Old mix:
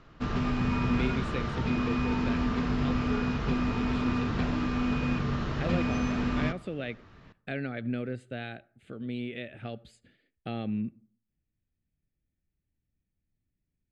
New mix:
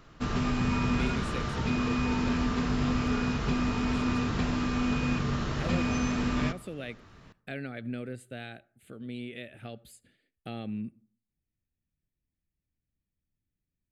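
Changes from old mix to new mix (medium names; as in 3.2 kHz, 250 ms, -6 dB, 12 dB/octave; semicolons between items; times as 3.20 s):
speech -4.0 dB; master: remove distance through air 120 m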